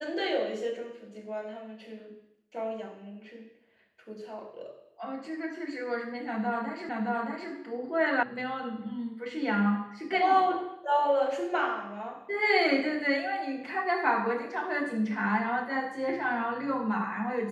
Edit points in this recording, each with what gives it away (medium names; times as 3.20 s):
6.89 s: repeat of the last 0.62 s
8.23 s: sound stops dead